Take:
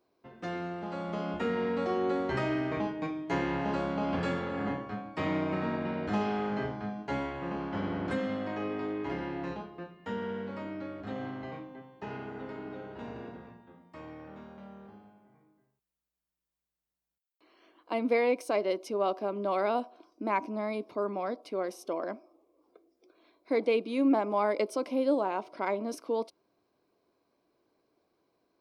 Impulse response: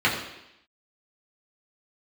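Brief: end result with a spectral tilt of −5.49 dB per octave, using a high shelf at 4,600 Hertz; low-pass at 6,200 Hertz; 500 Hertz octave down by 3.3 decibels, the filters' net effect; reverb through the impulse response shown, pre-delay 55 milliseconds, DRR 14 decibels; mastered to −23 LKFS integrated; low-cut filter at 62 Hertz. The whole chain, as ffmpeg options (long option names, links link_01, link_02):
-filter_complex "[0:a]highpass=62,lowpass=6200,equalizer=frequency=500:width_type=o:gain=-4,highshelf=frequency=4600:gain=-6.5,asplit=2[link_01][link_02];[1:a]atrim=start_sample=2205,adelay=55[link_03];[link_02][link_03]afir=irnorm=-1:irlink=0,volume=-31dB[link_04];[link_01][link_04]amix=inputs=2:normalize=0,volume=12dB"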